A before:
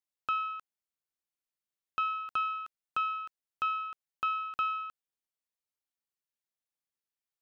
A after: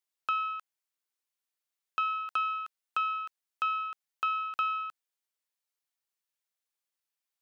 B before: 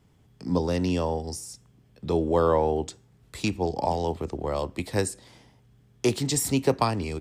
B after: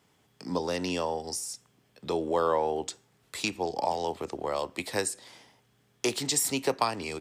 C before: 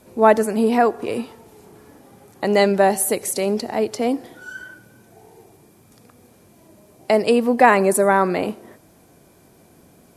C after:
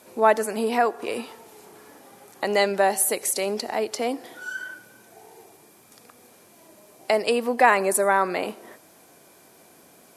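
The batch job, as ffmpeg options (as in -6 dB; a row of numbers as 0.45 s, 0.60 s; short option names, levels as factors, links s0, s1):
-filter_complex "[0:a]highpass=f=700:p=1,asplit=2[s0][s1];[s1]acompressor=threshold=0.0251:ratio=6,volume=1.06[s2];[s0][s2]amix=inputs=2:normalize=0,volume=0.75"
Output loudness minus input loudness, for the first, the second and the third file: +1.5 LU, -3.5 LU, -5.0 LU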